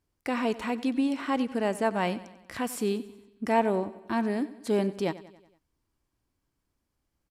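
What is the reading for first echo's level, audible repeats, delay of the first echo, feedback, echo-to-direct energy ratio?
−17.0 dB, 4, 93 ms, 54%, −15.5 dB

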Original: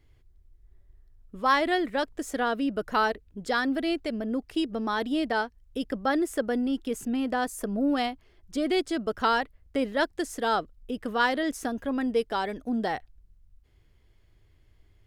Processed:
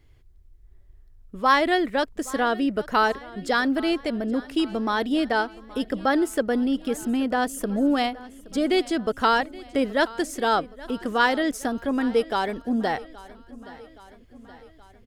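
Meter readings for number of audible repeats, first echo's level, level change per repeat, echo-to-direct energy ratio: 4, −20.0 dB, −4.5 dB, −18.0 dB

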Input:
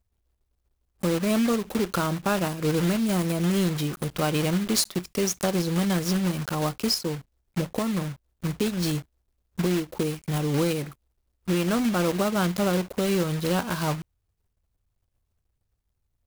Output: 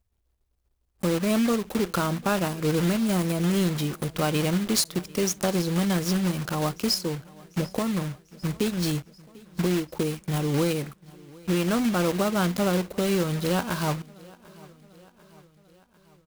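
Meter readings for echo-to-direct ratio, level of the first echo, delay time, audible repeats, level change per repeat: −22.0 dB, −23.5 dB, 745 ms, 3, −4.5 dB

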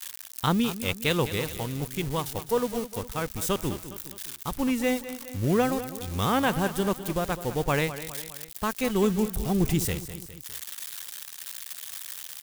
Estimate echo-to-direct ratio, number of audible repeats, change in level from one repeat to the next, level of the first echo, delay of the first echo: −11.5 dB, 3, −5.5 dB, −13.0 dB, 205 ms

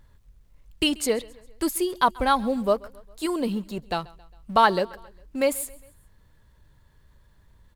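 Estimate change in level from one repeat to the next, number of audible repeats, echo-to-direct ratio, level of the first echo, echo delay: −5.5 dB, 3, −21.5 dB, −23.0 dB, 135 ms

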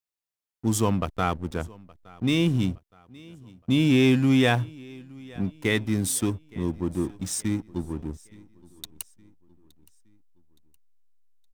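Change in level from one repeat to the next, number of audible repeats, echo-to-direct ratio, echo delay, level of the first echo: −7.0 dB, 2, −22.5 dB, 868 ms, −23.5 dB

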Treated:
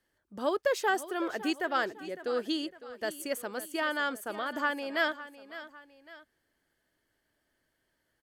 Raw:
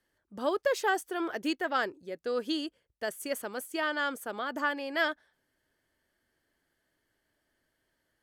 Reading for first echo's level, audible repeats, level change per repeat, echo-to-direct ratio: −15.0 dB, 2, −7.0 dB, −14.0 dB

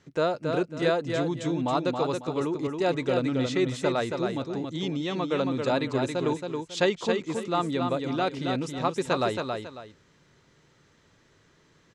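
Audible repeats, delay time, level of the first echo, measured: 2, 274 ms, −5.0 dB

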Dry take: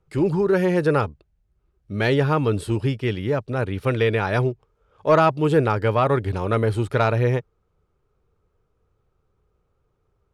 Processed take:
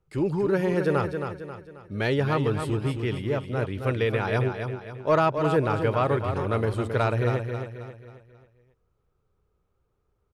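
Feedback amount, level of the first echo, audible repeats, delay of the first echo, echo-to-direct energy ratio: 42%, −7.0 dB, 4, 269 ms, −6.0 dB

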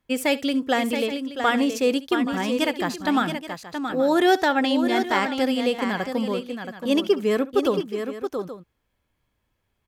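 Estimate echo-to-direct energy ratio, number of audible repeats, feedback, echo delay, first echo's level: −6.5 dB, 3, repeats not evenly spaced, 67 ms, −18.5 dB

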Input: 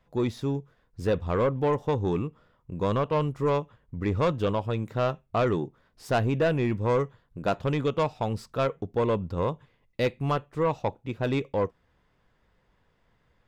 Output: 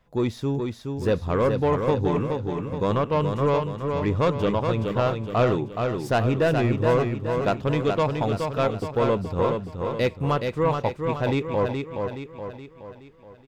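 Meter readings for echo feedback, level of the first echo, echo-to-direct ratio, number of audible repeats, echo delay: 49%, −5.0 dB, −4.0 dB, 5, 422 ms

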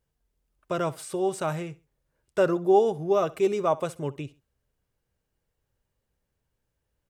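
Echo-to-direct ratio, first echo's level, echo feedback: −19.5 dB, −20.0 dB, 30%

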